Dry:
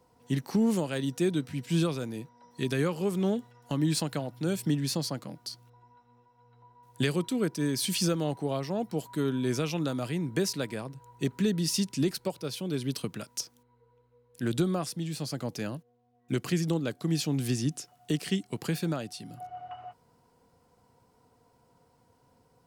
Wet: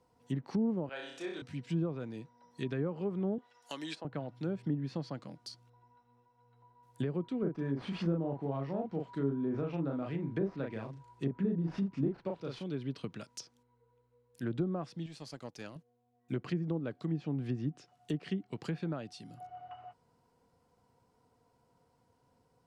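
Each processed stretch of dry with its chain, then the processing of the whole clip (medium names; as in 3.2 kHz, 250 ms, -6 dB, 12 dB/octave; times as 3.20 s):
0.89–1.42 s: high-pass 610 Hz + treble shelf 5.4 kHz -9 dB + flutter echo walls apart 5.3 m, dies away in 0.66 s
3.38–4.05 s: high-pass 480 Hz + treble shelf 2.7 kHz +11.5 dB
7.39–12.64 s: CVSD coder 64 kbps + treble shelf 3.8 kHz -7.5 dB + doubling 36 ms -3 dB
15.06–15.76 s: peaking EQ 170 Hz -5 dB 2.4 oct + power-law waveshaper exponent 1.4
whole clip: low-pass that closes with the level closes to 840 Hz, closed at -23 dBFS; treble shelf 10 kHz -6.5 dB; trim -6 dB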